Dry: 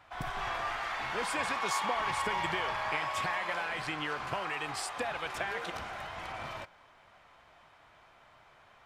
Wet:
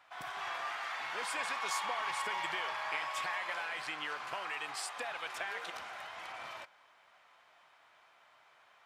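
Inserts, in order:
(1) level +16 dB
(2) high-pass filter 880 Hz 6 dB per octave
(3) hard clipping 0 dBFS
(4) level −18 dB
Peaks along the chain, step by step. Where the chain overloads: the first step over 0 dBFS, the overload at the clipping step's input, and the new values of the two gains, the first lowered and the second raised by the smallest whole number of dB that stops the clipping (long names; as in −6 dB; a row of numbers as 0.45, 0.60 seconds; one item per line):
−2.0, −3.5, −3.5, −21.5 dBFS
no step passes full scale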